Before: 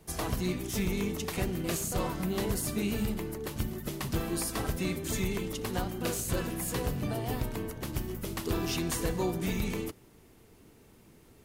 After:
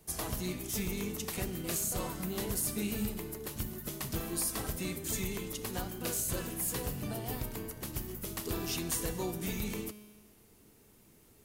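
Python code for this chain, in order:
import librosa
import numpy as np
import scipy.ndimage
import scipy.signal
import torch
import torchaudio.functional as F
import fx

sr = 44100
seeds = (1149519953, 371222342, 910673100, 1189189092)

y = fx.high_shelf(x, sr, hz=5900.0, db=10.0)
y = fx.comb_fb(y, sr, f0_hz=210.0, decay_s=1.5, harmonics='all', damping=0.0, mix_pct=70)
y = y * 10.0 ** (4.5 / 20.0)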